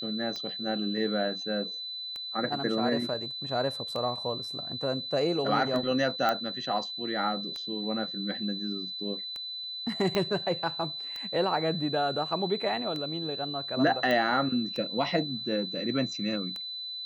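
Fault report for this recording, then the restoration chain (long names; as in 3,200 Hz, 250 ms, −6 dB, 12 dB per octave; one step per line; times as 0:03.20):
scratch tick 33 1/3 rpm −23 dBFS
whistle 4,000 Hz −35 dBFS
0:06.29: click −14 dBFS
0:10.15: click −14 dBFS
0:14.11: click −17 dBFS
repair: click removal
notch filter 4,000 Hz, Q 30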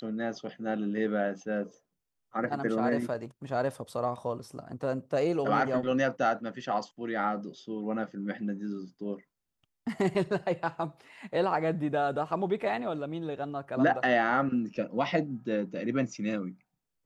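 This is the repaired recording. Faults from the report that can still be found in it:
0:10.15: click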